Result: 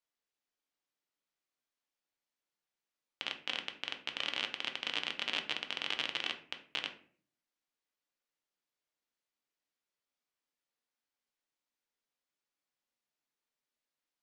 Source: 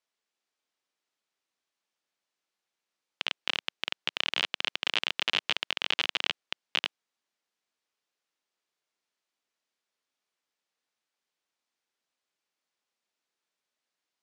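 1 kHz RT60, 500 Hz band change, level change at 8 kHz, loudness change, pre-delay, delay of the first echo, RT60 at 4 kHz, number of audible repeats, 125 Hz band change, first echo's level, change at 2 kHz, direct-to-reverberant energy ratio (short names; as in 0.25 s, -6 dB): 0.45 s, -5.5 dB, -7.0 dB, -6.5 dB, 3 ms, none, 0.30 s, none, n/a, none, -6.5 dB, 4.5 dB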